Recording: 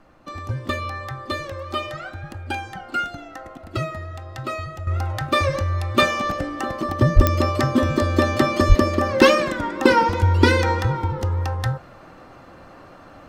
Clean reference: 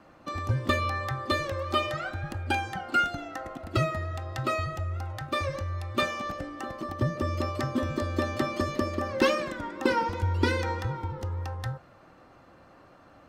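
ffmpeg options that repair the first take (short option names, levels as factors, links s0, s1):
-filter_complex "[0:a]adeclick=t=4,asplit=3[s0][s1][s2];[s0]afade=t=out:st=7.15:d=0.02[s3];[s1]highpass=f=140:w=0.5412,highpass=f=140:w=1.3066,afade=t=in:st=7.15:d=0.02,afade=t=out:st=7.27:d=0.02[s4];[s2]afade=t=in:st=7.27:d=0.02[s5];[s3][s4][s5]amix=inputs=3:normalize=0,asplit=3[s6][s7][s8];[s6]afade=t=out:st=8.68:d=0.02[s9];[s7]highpass=f=140:w=0.5412,highpass=f=140:w=1.3066,afade=t=in:st=8.68:d=0.02,afade=t=out:st=8.8:d=0.02[s10];[s8]afade=t=in:st=8.8:d=0.02[s11];[s9][s10][s11]amix=inputs=3:normalize=0,agate=range=0.0891:threshold=0.0158,asetnsamples=n=441:p=0,asendcmd='4.87 volume volume -10dB',volume=1"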